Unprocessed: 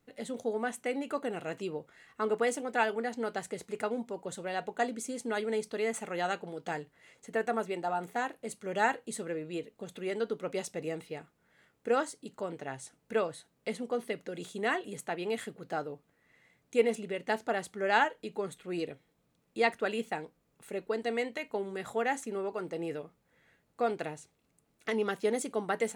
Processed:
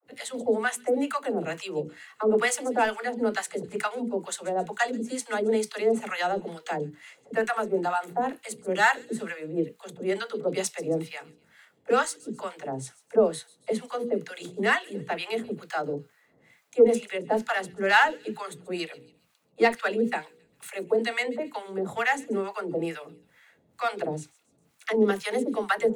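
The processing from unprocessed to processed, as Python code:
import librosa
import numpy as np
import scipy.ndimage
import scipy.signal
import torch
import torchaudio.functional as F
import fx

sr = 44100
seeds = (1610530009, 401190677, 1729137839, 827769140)

p1 = scipy.signal.sosfilt(scipy.signal.butter(2, 91.0, 'highpass', fs=sr, output='sos'), x)
p2 = fx.hum_notches(p1, sr, base_hz=60, count=8)
p3 = np.clip(p2, -10.0 ** (-23.0 / 20.0), 10.0 ** (-23.0 / 20.0))
p4 = p2 + (p3 * librosa.db_to_amplitude(-4.0))
p5 = fx.harmonic_tremolo(p4, sr, hz=2.2, depth_pct=100, crossover_hz=830.0)
p6 = fx.dispersion(p5, sr, late='lows', ms=69.0, hz=320.0)
p7 = p6 + fx.echo_wet_highpass(p6, sr, ms=136, feedback_pct=45, hz=3500.0, wet_db=-18.0, dry=0)
y = p7 * librosa.db_to_amplitude(7.5)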